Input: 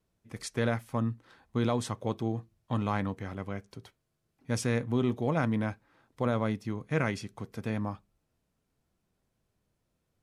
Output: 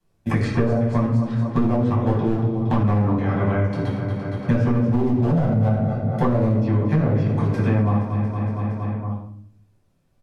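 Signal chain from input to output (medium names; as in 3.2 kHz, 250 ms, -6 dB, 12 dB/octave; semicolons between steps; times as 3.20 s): 2.27–2.82 s: self-modulated delay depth 0.32 ms; low-pass that closes with the level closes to 640 Hz, closed at -24.5 dBFS; 5.30–6.21 s: comb 1.5 ms, depth 83%; gate -56 dBFS, range -32 dB; feedback delay 232 ms, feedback 50%, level -12.5 dB; hard clipper -22 dBFS, distortion -18 dB; simulated room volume 840 m³, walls furnished, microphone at 8.6 m; peak limiter -11 dBFS, peak gain reduction 7 dB; three bands compressed up and down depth 100%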